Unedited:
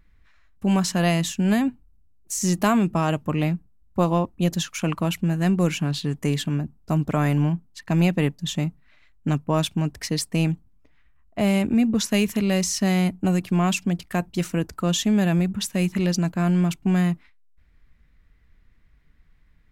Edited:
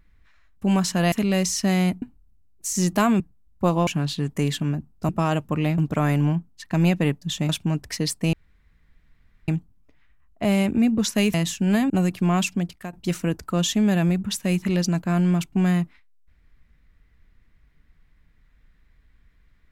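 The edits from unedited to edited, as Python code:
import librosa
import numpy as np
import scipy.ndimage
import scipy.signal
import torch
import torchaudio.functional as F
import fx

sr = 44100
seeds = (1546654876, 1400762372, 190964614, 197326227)

y = fx.edit(x, sr, fx.swap(start_s=1.12, length_s=0.56, other_s=12.3, other_length_s=0.9),
    fx.move(start_s=2.86, length_s=0.69, to_s=6.95),
    fx.cut(start_s=4.22, length_s=1.51),
    fx.cut(start_s=8.66, length_s=0.94),
    fx.insert_room_tone(at_s=10.44, length_s=1.15),
    fx.fade_out_to(start_s=13.71, length_s=0.52, curve='qsin', floor_db=-16.0), tone=tone)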